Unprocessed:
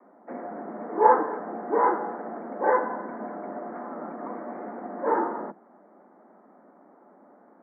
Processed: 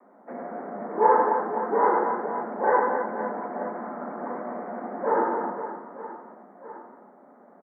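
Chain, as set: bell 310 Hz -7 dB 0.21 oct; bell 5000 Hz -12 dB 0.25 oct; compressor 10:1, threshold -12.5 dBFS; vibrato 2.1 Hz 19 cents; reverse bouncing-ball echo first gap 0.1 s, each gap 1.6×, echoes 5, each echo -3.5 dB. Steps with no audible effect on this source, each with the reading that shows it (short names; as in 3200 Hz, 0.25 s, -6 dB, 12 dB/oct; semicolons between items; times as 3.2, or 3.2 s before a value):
bell 5000 Hz: input band ends at 2000 Hz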